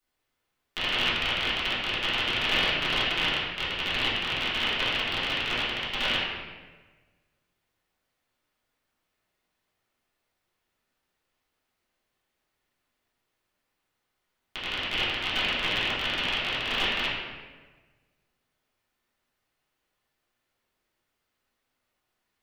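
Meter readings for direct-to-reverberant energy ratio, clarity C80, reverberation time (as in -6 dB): -12.0 dB, 2.0 dB, 1.4 s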